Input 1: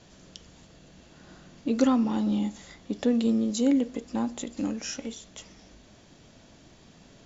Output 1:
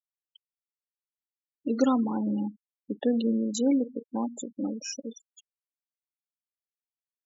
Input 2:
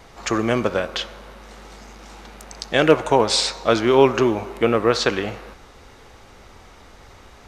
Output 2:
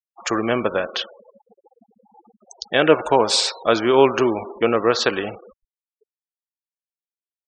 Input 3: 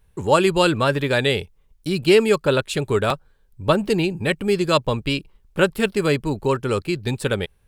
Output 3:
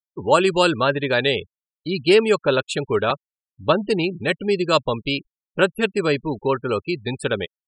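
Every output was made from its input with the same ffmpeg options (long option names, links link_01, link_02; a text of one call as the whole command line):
ffmpeg -i in.wav -af "lowshelf=frequency=140:gain=-11,bandreject=frequency=2100:width=20,afftfilt=real='re*gte(hypot(re,im),0.0316)':imag='im*gte(hypot(re,im),0.0316)':win_size=1024:overlap=0.75,volume=1dB" out.wav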